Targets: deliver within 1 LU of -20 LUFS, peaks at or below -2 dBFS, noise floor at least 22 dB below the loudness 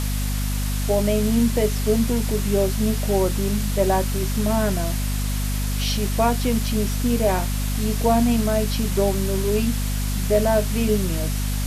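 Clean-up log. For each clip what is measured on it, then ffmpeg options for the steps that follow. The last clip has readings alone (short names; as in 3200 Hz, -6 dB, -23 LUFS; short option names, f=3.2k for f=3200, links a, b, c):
hum 50 Hz; harmonics up to 250 Hz; hum level -21 dBFS; noise floor -24 dBFS; noise floor target -44 dBFS; loudness -22.0 LUFS; peak -6.5 dBFS; loudness target -20.0 LUFS
-> -af "bandreject=f=50:t=h:w=4,bandreject=f=100:t=h:w=4,bandreject=f=150:t=h:w=4,bandreject=f=200:t=h:w=4,bandreject=f=250:t=h:w=4"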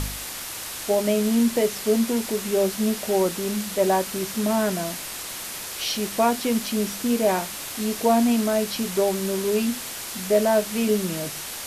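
hum none; noise floor -34 dBFS; noise floor target -46 dBFS
-> -af "afftdn=nr=12:nf=-34"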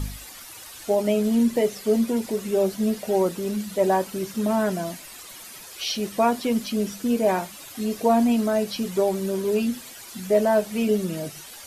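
noise floor -42 dBFS; noise floor target -46 dBFS
-> -af "afftdn=nr=6:nf=-42"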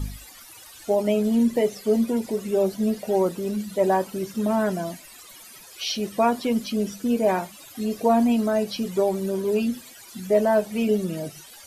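noise floor -46 dBFS; loudness -24.0 LUFS; peak -9.0 dBFS; loudness target -20.0 LUFS
-> -af "volume=4dB"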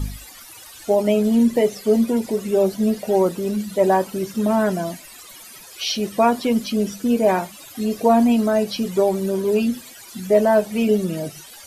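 loudness -20.0 LUFS; peak -5.0 dBFS; noise floor -42 dBFS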